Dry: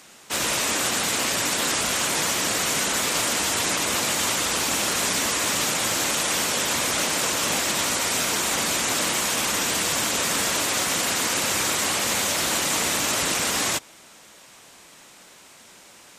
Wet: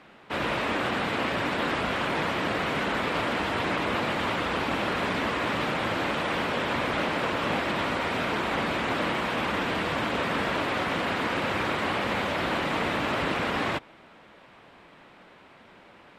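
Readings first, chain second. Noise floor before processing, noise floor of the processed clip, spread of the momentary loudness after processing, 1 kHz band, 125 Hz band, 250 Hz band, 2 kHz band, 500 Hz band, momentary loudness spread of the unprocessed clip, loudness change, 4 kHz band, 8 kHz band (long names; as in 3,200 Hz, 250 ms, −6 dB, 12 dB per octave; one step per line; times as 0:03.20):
−49 dBFS, −53 dBFS, 1 LU, 0.0 dB, +2.0 dB, +2.0 dB, −2.0 dB, +1.0 dB, 0 LU, −5.5 dB, −9.5 dB, −27.0 dB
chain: high-frequency loss of the air 470 metres
level +2.5 dB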